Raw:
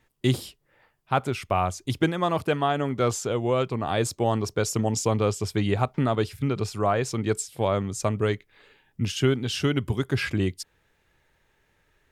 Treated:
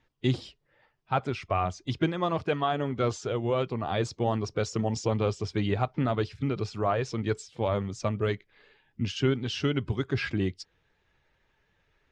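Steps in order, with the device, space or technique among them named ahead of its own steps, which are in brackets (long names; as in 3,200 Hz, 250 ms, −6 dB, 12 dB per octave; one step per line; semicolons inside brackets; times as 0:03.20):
clip after many re-uploads (low-pass filter 5,800 Hz 24 dB per octave; spectral magnitudes quantised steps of 15 dB)
level −3 dB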